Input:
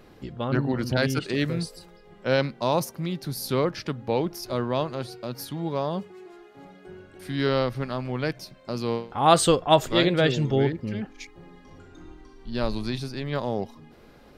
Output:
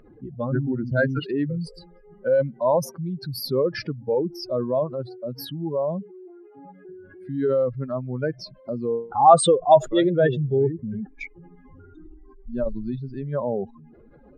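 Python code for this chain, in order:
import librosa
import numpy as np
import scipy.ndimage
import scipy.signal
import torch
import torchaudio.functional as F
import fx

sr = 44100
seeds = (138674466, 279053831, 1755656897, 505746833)

y = fx.spec_expand(x, sr, power=2.6)
y = fx.peak_eq(y, sr, hz=1600.0, db=10.5, octaves=2.3)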